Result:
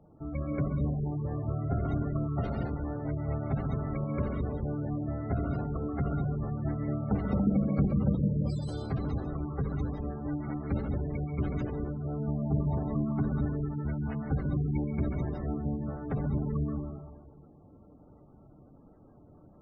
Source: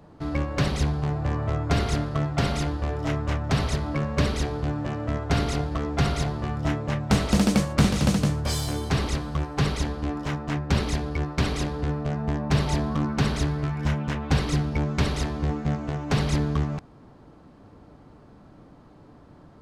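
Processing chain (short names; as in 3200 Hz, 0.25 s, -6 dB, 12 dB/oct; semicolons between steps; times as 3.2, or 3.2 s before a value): reverb RT60 1.4 s, pre-delay 0.118 s, DRR 1 dB; spectral gate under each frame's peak -20 dB strong; high shelf 2200 Hz -11 dB; notch 1000 Hz, Q 7.1; gain -7.5 dB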